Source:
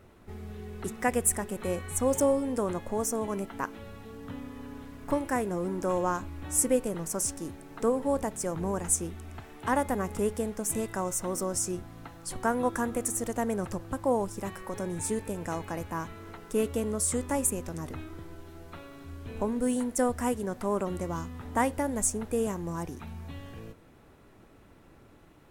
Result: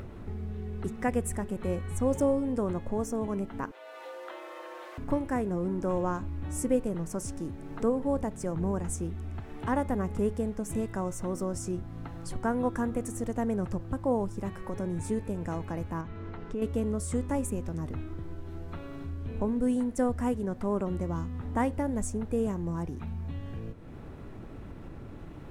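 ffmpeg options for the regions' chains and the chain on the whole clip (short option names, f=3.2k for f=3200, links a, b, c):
-filter_complex "[0:a]asettb=1/sr,asplit=3[a][b][c];[a]atrim=end=3.714[d];[b]atrim=start=3.71:end=4.98,asetpts=PTS-STARTPTS,afade=t=in:d=0.004:c=qsin,afade=t=out:st=1.266:d=0.004:c=qsin,highpass=f=470:w=0.5412,highpass=f=470:w=1.3066,afreqshift=78[e];[c]atrim=start=4.976[f];[d][e]acrossfade=d=0.004:c1=hsin:c2=qsin[g];[g][f]acrossfade=d=0.004:c1=qsin:c2=hsin,asettb=1/sr,asplit=3[h][i][j];[h]atrim=end=16.014[k];[i]atrim=start=16.01:end=16.62,asetpts=PTS-STARTPTS,afade=t=in:d=0.004:c=qsin,afade=t=out:st=0.606:d=0.004:c=qsin,lowpass=4.3k,acompressor=threshold=-42dB:ratio=1.5:attack=3.2:release=140:knee=1:detection=peak[l];[j]atrim=start=16.616[m];[k][l]acrossfade=d=0.004:c1=hsin:c2=qsin[n];[n][m]acrossfade=d=0.004:c1=qsin:c2=hsin,lowpass=f=3.7k:p=1,lowshelf=f=310:g=10,acompressor=mode=upward:threshold=-27dB:ratio=2.5,volume=-4.5dB"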